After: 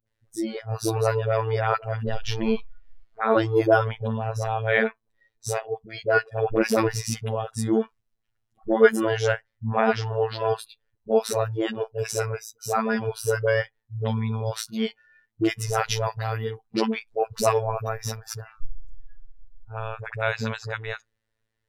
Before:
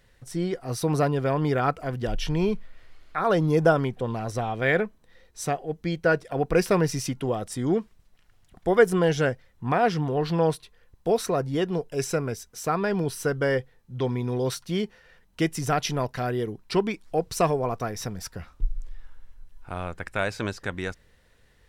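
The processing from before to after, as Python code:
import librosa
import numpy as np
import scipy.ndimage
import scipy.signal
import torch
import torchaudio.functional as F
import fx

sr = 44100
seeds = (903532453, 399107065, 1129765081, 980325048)

y = fx.dispersion(x, sr, late='highs', ms=70.0, hz=600.0)
y = fx.robotise(y, sr, hz=111.0)
y = fx.noise_reduce_blind(y, sr, reduce_db=21)
y = y * 10.0 ** (4.0 / 20.0)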